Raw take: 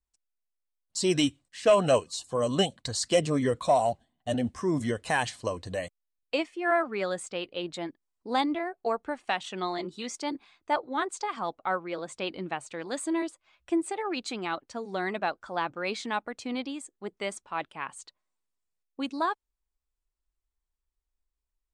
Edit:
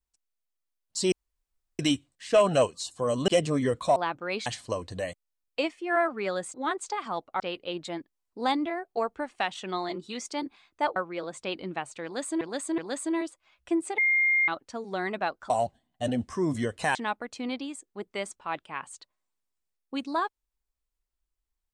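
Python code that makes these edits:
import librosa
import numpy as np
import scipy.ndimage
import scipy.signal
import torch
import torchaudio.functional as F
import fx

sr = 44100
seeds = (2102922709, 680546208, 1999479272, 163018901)

y = fx.edit(x, sr, fx.insert_room_tone(at_s=1.12, length_s=0.67),
    fx.cut(start_s=2.61, length_s=0.47),
    fx.swap(start_s=3.76, length_s=1.45, other_s=15.51, other_length_s=0.5),
    fx.move(start_s=10.85, length_s=0.86, to_s=7.29),
    fx.repeat(start_s=12.79, length_s=0.37, count=3),
    fx.bleep(start_s=13.99, length_s=0.5, hz=2120.0, db=-20.0), tone=tone)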